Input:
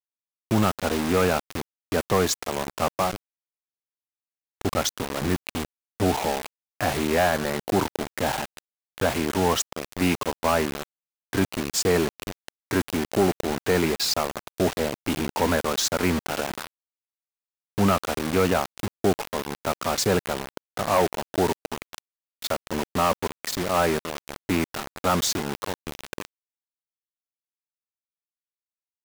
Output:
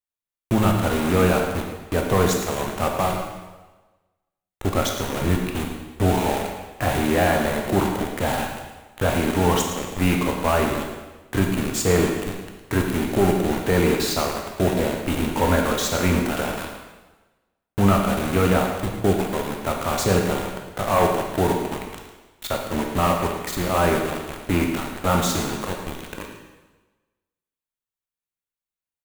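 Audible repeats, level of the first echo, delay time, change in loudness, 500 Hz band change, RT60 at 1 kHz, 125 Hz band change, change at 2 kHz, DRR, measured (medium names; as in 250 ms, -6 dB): 1, -11.5 dB, 110 ms, +3.0 dB, +2.5 dB, 1.2 s, +6.5 dB, +2.5 dB, 1.0 dB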